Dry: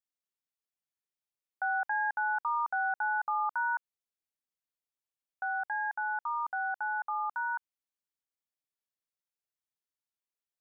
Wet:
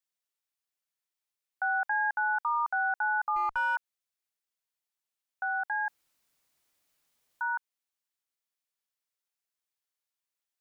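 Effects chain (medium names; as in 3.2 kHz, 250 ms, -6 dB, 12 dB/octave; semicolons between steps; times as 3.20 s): bass shelf 490 Hz -11 dB; 3.36–3.76 s: sliding maximum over 3 samples; 5.88–7.41 s: room tone; trim +4 dB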